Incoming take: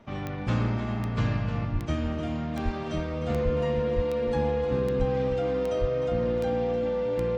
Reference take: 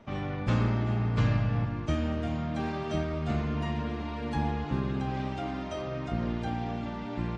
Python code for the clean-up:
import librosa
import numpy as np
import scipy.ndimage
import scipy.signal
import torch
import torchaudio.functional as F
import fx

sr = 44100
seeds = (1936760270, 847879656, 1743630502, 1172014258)

y = fx.fix_declick_ar(x, sr, threshold=10.0)
y = fx.notch(y, sr, hz=500.0, q=30.0)
y = fx.fix_deplosive(y, sr, at_s=(1.72, 2.64, 3.44, 3.95, 4.98, 5.8))
y = fx.fix_echo_inverse(y, sr, delay_ms=305, level_db=-10.5)